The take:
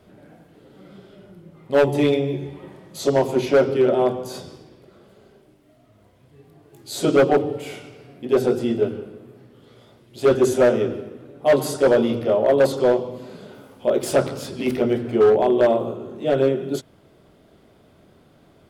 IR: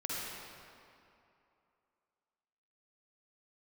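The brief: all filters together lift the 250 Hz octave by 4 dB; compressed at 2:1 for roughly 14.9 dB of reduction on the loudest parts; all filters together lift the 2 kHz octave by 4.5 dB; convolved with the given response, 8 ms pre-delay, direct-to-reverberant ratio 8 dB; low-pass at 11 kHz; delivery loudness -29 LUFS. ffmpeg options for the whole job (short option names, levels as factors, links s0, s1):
-filter_complex "[0:a]lowpass=11000,equalizer=f=250:t=o:g=5,equalizer=f=2000:t=o:g=6,acompressor=threshold=0.0112:ratio=2,asplit=2[s0][s1];[1:a]atrim=start_sample=2205,adelay=8[s2];[s1][s2]afir=irnorm=-1:irlink=0,volume=0.251[s3];[s0][s3]amix=inputs=2:normalize=0,volume=1.33"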